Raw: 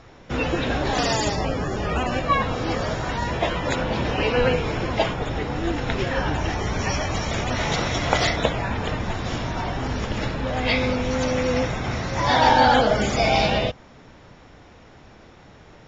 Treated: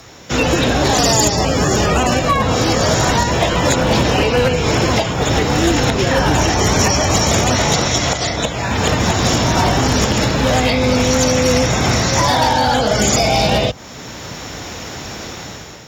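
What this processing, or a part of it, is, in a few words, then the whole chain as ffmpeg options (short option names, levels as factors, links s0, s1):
FM broadcast chain: -filter_complex "[0:a]highpass=59,dynaudnorm=f=160:g=7:m=3.76,acrossover=split=170|1200[s0][s1][s2];[s0]acompressor=threshold=0.0891:ratio=4[s3];[s1]acompressor=threshold=0.126:ratio=4[s4];[s2]acompressor=threshold=0.0282:ratio=4[s5];[s3][s4][s5]amix=inputs=3:normalize=0,aemphasis=mode=production:type=50fm,alimiter=limit=0.282:level=0:latency=1:release=366,asoftclip=type=hard:threshold=0.188,lowpass=f=15000:w=0.5412,lowpass=f=15000:w=1.3066,aemphasis=mode=production:type=50fm,volume=2.24"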